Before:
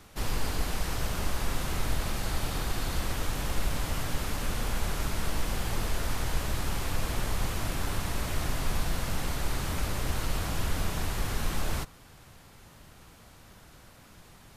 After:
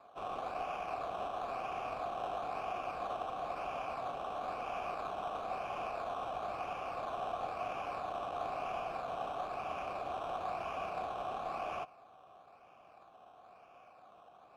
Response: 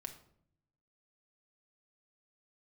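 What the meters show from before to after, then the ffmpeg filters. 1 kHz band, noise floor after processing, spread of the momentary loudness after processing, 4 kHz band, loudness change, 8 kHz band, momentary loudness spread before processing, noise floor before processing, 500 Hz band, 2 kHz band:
+2.0 dB, -60 dBFS, 20 LU, -15.5 dB, -6.5 dB, under -25 dB, 1 LU, -54 dBFS, 0.0 dB, -10.5 dB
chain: -filter_complex "[0:a]acrusher=samples=15:mix=1:aa=0.000001:lfo=1:lforange=9:lforate=1,asplit=3[s0][s1][s2];[s0]bandpass=f=730:t=q:w=8,volume=1[s3];[s1]bandpass=f=1090:t=q:w=8,volume=0.501[s4];[s2]bandpass=f=2440:t=q:w=8,volume=0.355[s5];[s3][s4][s5]amix=inputs=3:normalize=0,volume=2.37"

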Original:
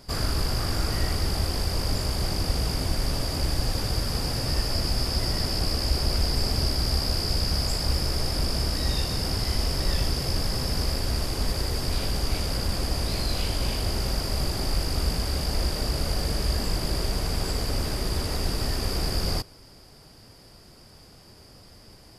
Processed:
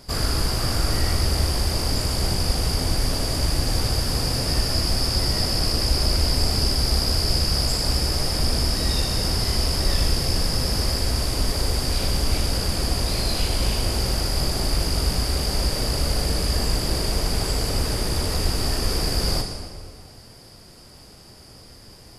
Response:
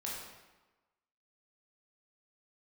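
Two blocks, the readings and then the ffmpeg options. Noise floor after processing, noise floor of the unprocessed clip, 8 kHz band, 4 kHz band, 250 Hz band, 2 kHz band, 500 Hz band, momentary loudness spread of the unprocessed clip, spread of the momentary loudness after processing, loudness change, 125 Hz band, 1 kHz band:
-46 dBFS, -51 dBFS, +6.5 dB, +5.0 dB, +3.5 dB, +3.5 dB, +4.0 dB, 3 LU, 3 LU, +4.5 dB, +3.5 dB, +3.5 dB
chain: -filter_complex "[0:a]asplit=2[s0][s1];[1:a]atrim=start_sample=2205,asetrate=23814,aresample=44100,highshelf=f=4900:g=8.5[s2];[s1][s2]afir=irnorm=-1:irlink=0,volume=0.398[s3];[s0][s3]amix=inputs=2:normalize=0"

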